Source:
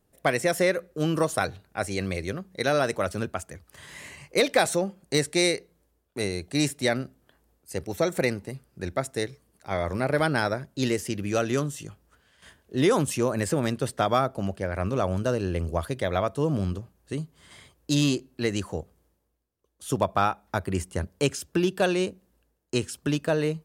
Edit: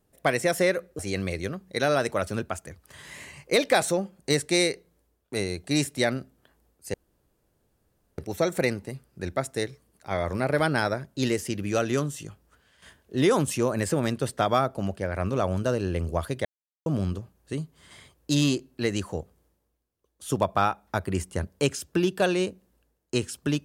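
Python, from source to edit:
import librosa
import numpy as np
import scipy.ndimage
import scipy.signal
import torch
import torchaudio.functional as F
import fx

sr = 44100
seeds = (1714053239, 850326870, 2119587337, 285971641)

y = fx.edit(x, sr, fx.cut(start_s=0.99, length_s=0.84),
    fx.insert_room_tone(at_s=7.78, length_s=1.24),
    fx.silence(start_s=16.05, length_s=0.41), tone=tone)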